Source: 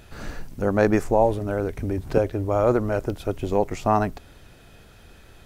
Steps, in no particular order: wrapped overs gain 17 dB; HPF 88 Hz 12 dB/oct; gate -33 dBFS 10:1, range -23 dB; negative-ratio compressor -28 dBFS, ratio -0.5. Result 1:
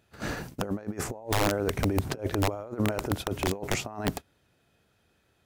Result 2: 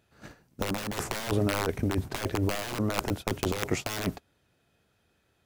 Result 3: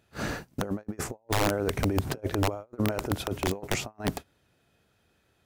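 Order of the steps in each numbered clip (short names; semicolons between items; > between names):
gate > HPF > negative-ratio compressor > wrapped overs; HPF > wrapped overs > gate > negative-ratio compressor; HPF > negative-ratio compressor > wrapped overs > gate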